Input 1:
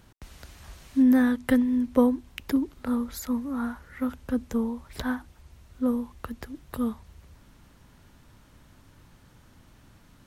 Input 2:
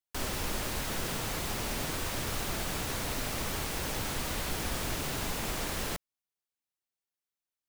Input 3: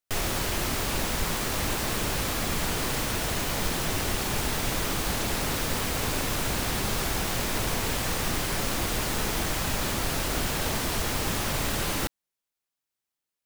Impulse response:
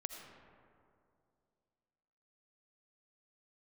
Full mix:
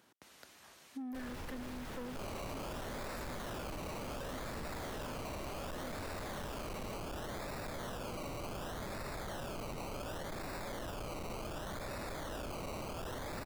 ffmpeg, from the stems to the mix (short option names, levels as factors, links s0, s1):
-filter_complex "[0:a]highpass=290,volume=0.473[s0];[1:a]highshelf=f=3200:g=-11.5,adelay=1000,volume=1.19[s1];[2:a]equalizer=f=590:w=3.7:g=10,acrusher=samples=20:mix=1:aa=0.000001:lfo=1:lforange=12:lforate=0.68,adelay=2050,volume=1.06[s2];[s0][s1][s2]amix=inputs=3:normalize=0,asoftclip=type=tanh:threshold=0.0335,acompressor=threshold=0.00794:ratio=6"